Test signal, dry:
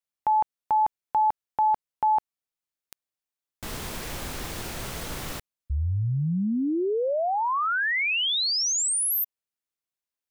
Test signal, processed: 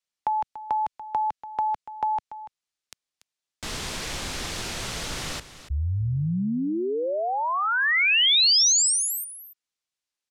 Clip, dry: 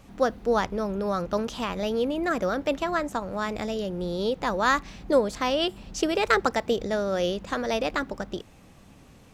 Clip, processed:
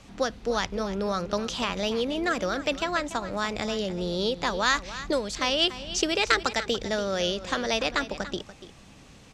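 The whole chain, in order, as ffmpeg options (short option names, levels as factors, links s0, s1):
-filter_complex "[0:a]lowpass=6700,highshelf=f=2300:g=9.5,acrossover=split=150|1800[s0][s1][s2];[s1]acompressor=threshold=0.0631:ratio=6:release=907:knee=2.83:detection=peak[s3];[s0][s3][s2]amix=inputs=3:normalize=0,aecho=1:1:288:0.2"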